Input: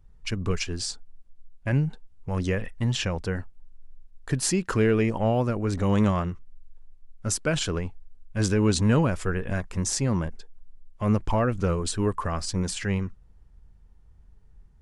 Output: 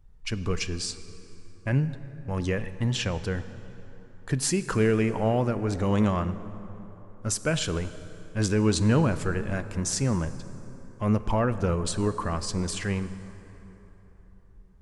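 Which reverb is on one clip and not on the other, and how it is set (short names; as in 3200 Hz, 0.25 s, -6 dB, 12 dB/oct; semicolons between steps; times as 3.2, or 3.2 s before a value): plate-style reverb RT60 3.8 s, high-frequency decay 0.55×, DRR 12 dB; gain -1 dB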